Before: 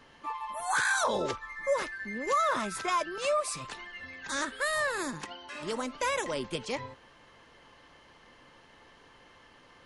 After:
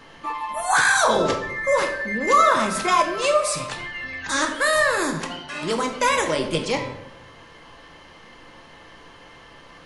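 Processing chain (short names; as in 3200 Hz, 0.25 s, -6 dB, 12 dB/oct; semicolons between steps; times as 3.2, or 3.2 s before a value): shoebox room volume 210 m³, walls mixed, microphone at 0.66 m; gain +9 dB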